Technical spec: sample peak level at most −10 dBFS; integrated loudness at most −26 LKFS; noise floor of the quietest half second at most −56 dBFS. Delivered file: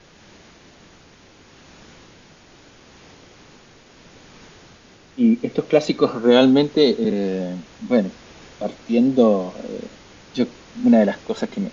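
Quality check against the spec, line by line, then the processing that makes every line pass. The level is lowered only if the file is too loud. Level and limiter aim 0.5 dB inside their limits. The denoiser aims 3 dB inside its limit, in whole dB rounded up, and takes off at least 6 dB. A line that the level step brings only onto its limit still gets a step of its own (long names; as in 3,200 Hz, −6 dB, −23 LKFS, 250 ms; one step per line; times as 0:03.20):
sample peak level −3.5 dBFS: out of spec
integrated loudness −19.0 LKFS: out of spec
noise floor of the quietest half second −49 dBFS: out of spec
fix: level −7.5 dB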